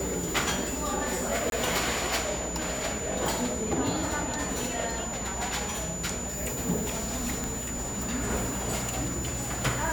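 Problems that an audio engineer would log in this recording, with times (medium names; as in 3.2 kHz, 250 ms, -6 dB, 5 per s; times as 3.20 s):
whine 7 kHz -35 dBFS
1.50–1.52 s: dropout 22 ms
7.44 s: pop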